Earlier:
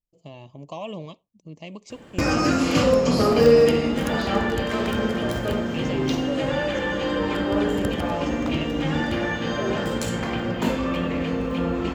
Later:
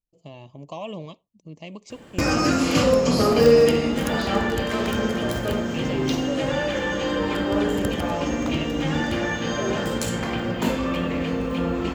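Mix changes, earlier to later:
first sound: add treble shelf 5.8 kHz +5 dB; second sound: add resonant low-pass 7.1 kHz, resonance Q 2.9

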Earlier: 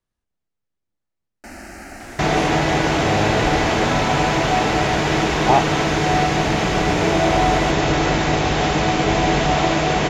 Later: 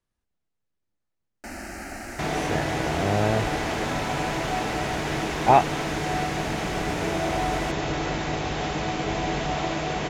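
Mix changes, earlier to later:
first sound: add treble shelf 12 kHz +3 dB; second sound -9.5 dB

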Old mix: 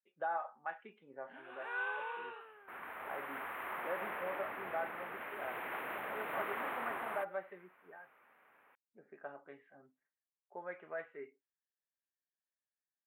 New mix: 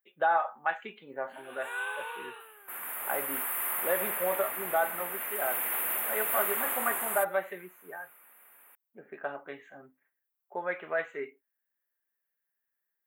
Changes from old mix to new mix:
speech +9.5 dB; master: remove distance through air 470 m

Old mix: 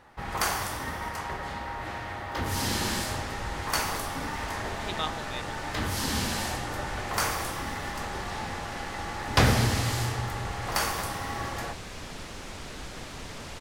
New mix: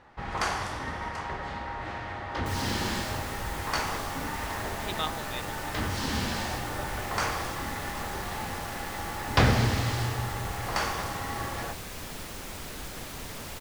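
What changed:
first sound: add distance through air 80 m; second sound: remove low-pass 7.4 kHz 12 dB/octave

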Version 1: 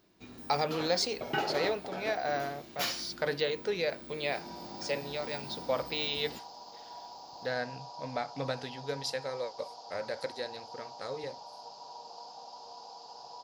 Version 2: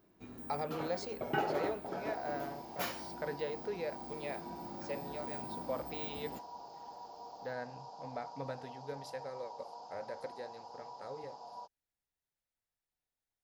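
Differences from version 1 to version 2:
speech -6.5 dB; second sound: entry -2.45 s; master: add peaking EQ 4.4 kHz -11.5 dB 1.9 oct

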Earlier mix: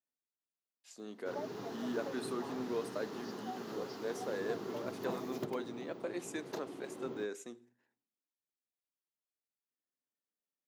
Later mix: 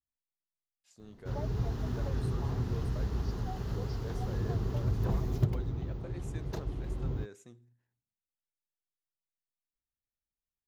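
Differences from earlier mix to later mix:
speech -8.5 dB; master: remove high-pass 240 Hz 24 dB/octave

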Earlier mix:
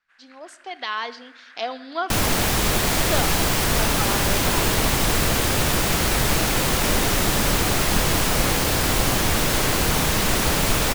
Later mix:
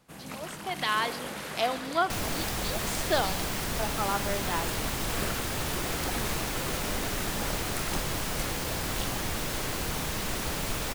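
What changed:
first sound: remove ladder band-pass 1.8 kHz, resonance 60%; second sound -11.5 dB

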